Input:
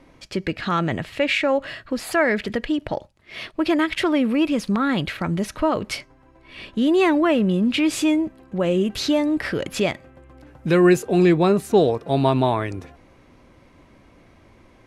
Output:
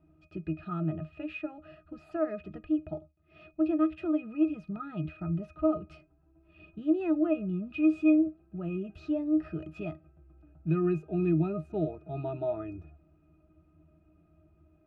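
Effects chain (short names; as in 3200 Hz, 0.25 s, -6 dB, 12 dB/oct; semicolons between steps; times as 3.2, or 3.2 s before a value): octave resonator D#, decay 0.14 s; gain -2 dB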